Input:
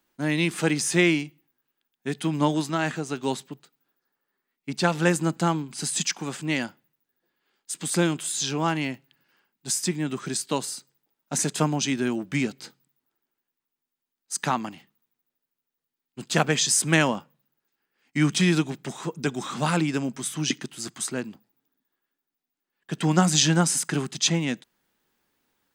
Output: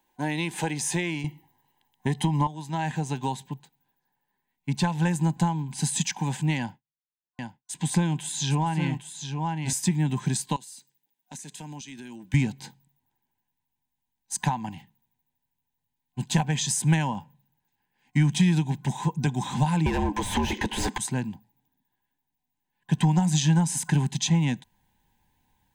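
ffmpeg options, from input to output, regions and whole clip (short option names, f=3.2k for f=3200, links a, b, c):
-filter_complex "[0:a]asettb=1/sr,asplit=3[a][b][c];[a]atrim=end=1.244[d];[b]atrim=start=1.24:end=2.47,asetpts=PTS-STARTPTS,afade=t=in:d=0.004:c=qsin,afade=t=out:st=1.226:d=0.004:c=qsin,acontrast=63,equalizer=f=470:w=1.1:g=8.5,aecho=1:1:1:0.53,atrim=end_sample=54243[e];[c]atrim=start=2.466[f];[d][e]acrossfade=d=0.004:c1=hsin:c2=qsin[g];[g][f]acrossfade=d=0.004:c1=qsin:c2=hsin,asettb=1/sr,asplit=3[h][i][j];[h]atrim=end=6.584[k];[i]atrim=start=6.58:end=9.73,asetpts=PTS-STARTPTS,afade=t=in:d=0.004:c=qsin,afade=t=out:st=3.146:d=0.004:c=qsin,highshelf=f=9.7k:g=-10,agate=range=-33dB:threshold=-54dB:ratio=3:release=100:detection=peak,aecho=1:1:808:0.376,atrim=end_sample=138915[l];[j]atrim=start=9.726[m];[k][l]acrossfade=d=0.004:c1=hsin:c2=qsin[n];[n][m]acrossfade=d=0.004:c1=qsin:c2=hsin,asettb=1/sr,asplit=3[o][p][q];[o]atrim=end=10.564[r];[p]atrim=start=10.56:end=12.34,asetpts=PTS-STARTPTS,afade=t=in:d=0.004:c=qsin,afade=t=out:st=1.776:d=0.004:c=qsin,highpass=340,equalizer=f=820:t=o:w=1.7:g=-11.5,acompressor=threshold=-39dB:ratio=6:attack=3.2:release=140:knee=1:detection=peak[s];[q]atrim=start=12.336[t];[r][s]acrossfade=d=0.004:c1=hsin:c2=qsin[u];[u][t]acrossfade=d=0.004:c1=qsin:c2=hsin,asettb=1/sr,asplit=3[v][w][x];[v]atrim=end=19.864[y];[w]atrim=start=19.86:end=20.98,asetpts=PTS-STARTPTS,afade=t=in:d=0.004:c=qsin,afade=t=out:st=1.116:d=0.004:c=qsin,afreqshift=76,asplit=2[z][aa];[aa]highpass=f=720:p=1,volume=33dB,asoftclip=type=tanh:threshold=-8.5dB[ab];[z][ab]amix=inputs=2:normalize=0,lowpass=f=1.3k:p=1,volume=-6dB[ac];[x]atrim=start=20.976[ad];[y][ac]acrossfade=d=0.004:c1=hsin:c2=qsin[ae];[ae][ad]acrossfade=d=0.004:c1=qsin:c2=hsin,superequalizer=9b=3.16:10b=0.251:14b=0.631,acompressor=threshold=-24dB:ratio=6,asubboost=boost=9:cutoff=130"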